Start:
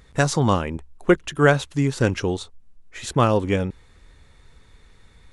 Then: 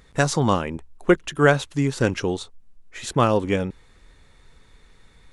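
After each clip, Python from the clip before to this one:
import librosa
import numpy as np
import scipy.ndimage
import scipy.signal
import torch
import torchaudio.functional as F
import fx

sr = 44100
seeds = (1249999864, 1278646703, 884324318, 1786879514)

y = fx.peak_eq(x, sr, hz=76.0, db=-5.5, octaves=1.2)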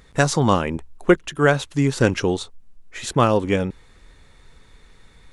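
y = fx.rider(x, sr, range_db=4, speed_s=0.5)
y = y * 10.0 ** (2.5 / 20.0)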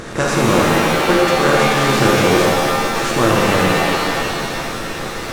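y = fx.bin_compress(x, sr, power=0.4)
y = fx.rev_shimmer(y, sr, seeds[0], rt60_s=2.4, semitones=7, shimmer_db=-2, drr_db=-3.0)
y = y * 10.0 ** (-6.0 / 20.0)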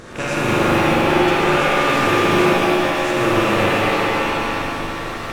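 y = fx.rattle_buzz(x, sr, strikes_db=-25.0, level_db=-11.0)
y = fx.rev_spring(y, sr, rt60_s=2.9, pass_ms=(39, 47), chirp_ms=80, drr_db=-5.5)
y = y * 10.0 ** (-8.5 / 20.0)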